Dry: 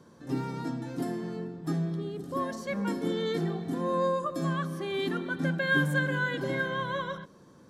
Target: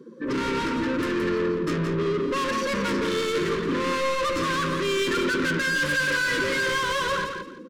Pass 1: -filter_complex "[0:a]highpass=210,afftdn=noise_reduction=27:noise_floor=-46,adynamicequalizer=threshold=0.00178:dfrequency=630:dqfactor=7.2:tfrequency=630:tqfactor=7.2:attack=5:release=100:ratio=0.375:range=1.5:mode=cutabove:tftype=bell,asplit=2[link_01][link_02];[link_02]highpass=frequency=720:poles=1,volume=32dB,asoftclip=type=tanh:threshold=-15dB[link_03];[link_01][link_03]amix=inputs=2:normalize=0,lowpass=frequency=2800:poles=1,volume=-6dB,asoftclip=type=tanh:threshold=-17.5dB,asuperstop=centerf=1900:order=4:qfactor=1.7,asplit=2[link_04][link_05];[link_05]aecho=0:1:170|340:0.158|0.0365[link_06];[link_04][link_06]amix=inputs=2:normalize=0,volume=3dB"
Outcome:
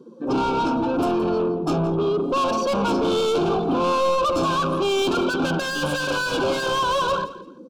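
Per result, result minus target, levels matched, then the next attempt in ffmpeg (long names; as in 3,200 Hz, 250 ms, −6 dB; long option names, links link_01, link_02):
soft clipping: distortion −12 dB; 2,000 Hz band −7.0 dB; echo-to-direct −9.5 dB
-filter_complex "[0:a]highpass=210,afftdn=noise_reduction=27:noise_floor=-46,adynamicequalizer=threshold=0.00178:dfrequency=630:dqfactor=7.2:tfrequency=630:tqfactor=7.2:attack=5:release=100:ratio=0.375:range=1.5:mode=cutabove:tftype=bell,asplit=2[link_01][link_02];[link_02]highpass=frequency=720:poles=1,volume=32dB,asoftclip=type=tanh:threshold=-15dB[link_03];[link_01][link_03]amix=inputs=2:normalize=0,lowpass=frequency=2800:poles=1,volume=-6dB,asoftclip=type=tanh:threshold=-26.5dB,asuperstop=centerf=1900:order=4:qfactor=1.7,asplit=2[link_04][link_05];[link_05]aecho=0:1:170|340:0.158|0.0365[link_06];[link_04][link_06]amix=inputs=2:normalize=0,volume=3dB"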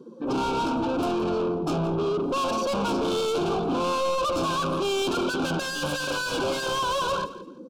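2,000 Hz band −7.0 dB; echo-to-direct −9.5 dB
-filter_complex "[0:a]highpass=210,afftdn=noise_reduction=27:noise_floor=-46,adynamicequalizer=threshold=0.00178:dfrequency=630:dqfactor=7.2:tfrequency=630:tqfactor=7.2:attack=5:release=100:ratio=0.375:range=1.5:mode=cutabove:tftype=bell,asplit=2[link_01][link_02];[link_02]highpass=frequency=720:poles=1,volume=32dB,asoftclip=type=tanh:threshold=-15dB[link_03];[link_01][link_03]amix=inputs=2:normalize=0,lowpass=frequency=2800:poles=1,volume=-6dB,asoftclip=type=tanh:threshold=-26.5dB,asuperstop=centerf=750:order=4:qfactor=1.7,asplit=2[link_04][link_05];[link_05]aecho=0:1:170|340:0.158|0.0365[link_06];[link_04][link_06]amix=inputs=2:normalize=0,volume=3dB"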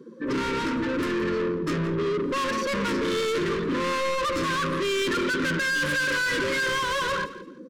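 echo-to-direct −9.5 dB
-filter_complex "[0:a]highpass=210,afftdn=noise_reduction=27:noise_floor=-46,adynamicequalizer=threshold=0.00178:dfrequency=630:dqfactor=7.2:tfrequency=630:tqfactor=7.2:attack=5:release=100:ratio=0.375:range=1.5:mode=cutabove:tftype=bell,asplit=2[link_01][link_02];[link_02]highpass=frequency=720:poles=1,volume=32dB,asoftclip=type=tanh:threshold=-15dB[link_03];[link_01][link_03]amix=inputs=2:normalize=0,lowpass=frequency=2800:poles=1,volume=-6dB,asoftclip=type=tanh:threshold=-26.5dB,asuperstop=centerf=750:order=4:qfactor=1.7,asplit=2[link_04][link_05];[link_05]aecho=0:1:170|340|510:0.473|0.109|0.025[link_06];[link_04][link_06]amix=inputs=2:normalize=0,volume=3dB"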